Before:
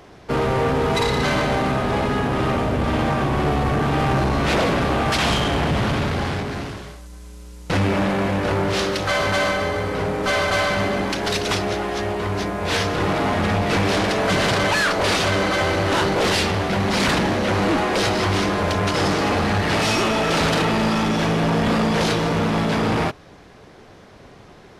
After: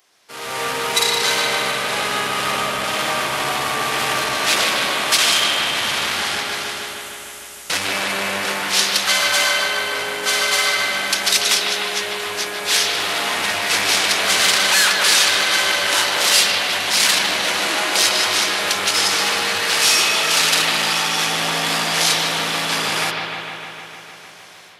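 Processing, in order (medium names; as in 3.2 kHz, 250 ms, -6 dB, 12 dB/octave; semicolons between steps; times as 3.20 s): differentiator; level rider gain up to 16 dB; bucket-brigade echo 152 ms, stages 4096, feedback 75%, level -4.5 dB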